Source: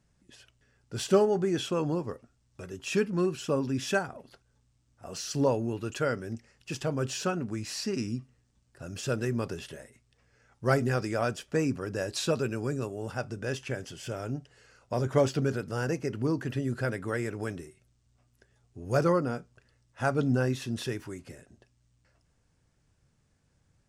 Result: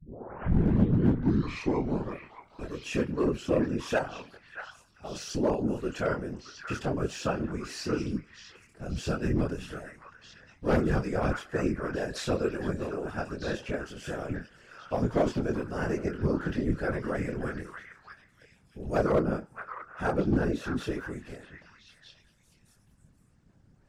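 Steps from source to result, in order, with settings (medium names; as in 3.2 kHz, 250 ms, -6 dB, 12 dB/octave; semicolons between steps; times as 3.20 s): tape start-up on the opening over 2.13 s; treble shelf 3 kHz -10.5 dB; de-hum 168.3 Hz, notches 32; in parallel at -2 dB: compression, threshold -39 dBFS, peak gain reduction 21 dB; on the sum: chorus voices 4, 1.1 Hz, delay 23 ms, depth 3 ms; hard clipper -21 dBFS, distortion -17 dB; on a send: repeats whose band climbs or falls 626 ms, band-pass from 1.5 kHz, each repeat 1.4 oct, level -4 dB; on the sum: whisper effect; trim +2.5 dB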